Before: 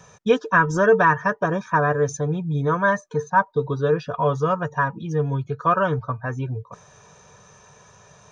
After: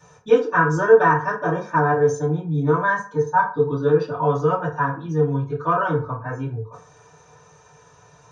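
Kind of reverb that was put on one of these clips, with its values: FDN reverb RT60 0.41 s, low-frequency decay 0.8×, high-frequency decay 0.55×, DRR -9 dB; gain -10 dB

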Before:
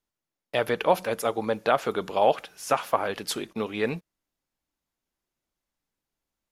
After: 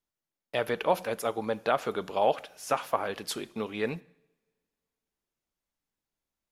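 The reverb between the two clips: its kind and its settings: two-slope reverb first 0.74 s, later 2.4 s, from -24 dB, DRR 19 dB; gain -4 dB

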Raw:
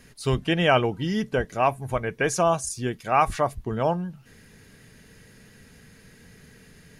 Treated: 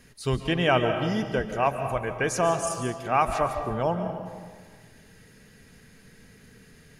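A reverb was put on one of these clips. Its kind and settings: digital reverb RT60 1.6 s, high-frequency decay 0.6×, pre-delay 0.105 s, DRR 6.5 dB; gain -2.5 dB

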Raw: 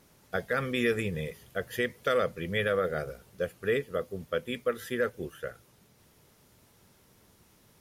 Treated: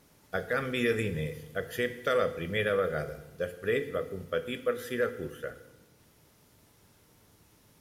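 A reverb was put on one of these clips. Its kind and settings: FDN reverb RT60 1 s, low-frequency decay 1.45×, high-frequency decay 0.95×, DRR 9 dB; gain -1 dB

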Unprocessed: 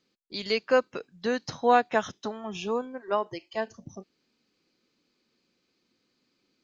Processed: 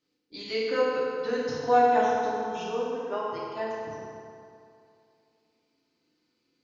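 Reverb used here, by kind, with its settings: FDN reverb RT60 2.5 s, low-frequency decay 0.85×, high-frequency decay 0.65×, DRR -8 dB; gain -10 dB

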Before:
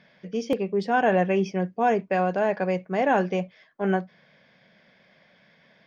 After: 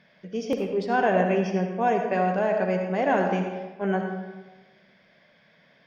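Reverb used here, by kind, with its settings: digital reverb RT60 1.2 s, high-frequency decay 0.65×, pre-delay 30 ms, DRR 3.5 dB; gain -2 dB

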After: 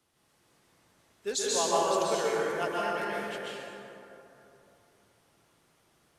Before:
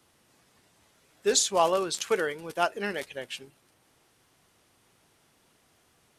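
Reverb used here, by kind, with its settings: plate-style reverb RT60 3 s, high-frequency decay 0.45×, pre-delay 0.115 s, DRR -6.5 dB; gain -9 dB

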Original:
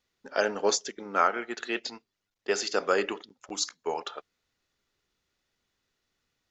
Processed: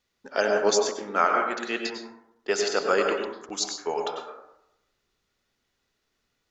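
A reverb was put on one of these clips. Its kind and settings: plate-style reverb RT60 0.82 s, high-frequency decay 0.35×, pre-delay 85 ms, DRR 2.5 dB; gain +1.5 dB

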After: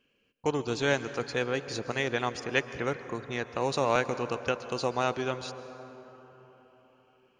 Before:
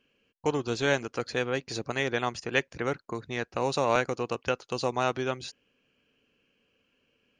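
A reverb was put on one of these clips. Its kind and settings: plate-style reverb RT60 4.3 s, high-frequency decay 0.4×, pre-delay 0.11 s, DRR 12 dB; gain -1 dB

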